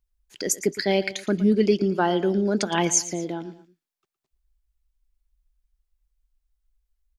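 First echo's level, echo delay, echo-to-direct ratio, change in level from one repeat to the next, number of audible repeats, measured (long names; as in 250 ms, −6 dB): −15.5 dB, 114 ms, −14.5 dB, −7.0 dB, 2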